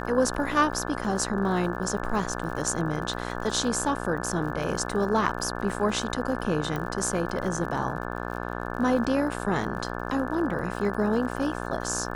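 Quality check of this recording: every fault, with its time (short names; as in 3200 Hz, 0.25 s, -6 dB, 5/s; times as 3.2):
buzz 60 Hz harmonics 29 -33 dBFS
crackle 58/s -36 dBFS
6.76 pop -18 dBFS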